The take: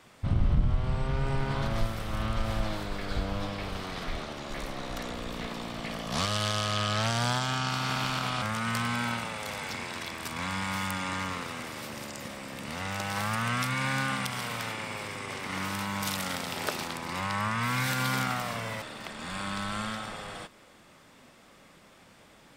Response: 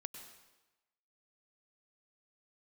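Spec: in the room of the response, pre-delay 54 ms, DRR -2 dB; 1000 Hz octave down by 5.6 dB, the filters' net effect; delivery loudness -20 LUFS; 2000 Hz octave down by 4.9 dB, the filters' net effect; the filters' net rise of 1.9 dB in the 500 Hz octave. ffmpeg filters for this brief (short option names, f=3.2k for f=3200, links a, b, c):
-filter_complex "[0:a]equalizer=f=500:t=o:g=5,equalizer=f=1k:t=o:g=-7.5,equalizer=f=2k:t=o:g=-4,asplit=2[a][b];[1:a]atrim=start_sample=2205,adelay=54[c];[b][c]afir=irnorm=-1:irlink=0,volume=5.5dB[d];[a][d]amix=inputs=2:normalize=0,volume=9dB"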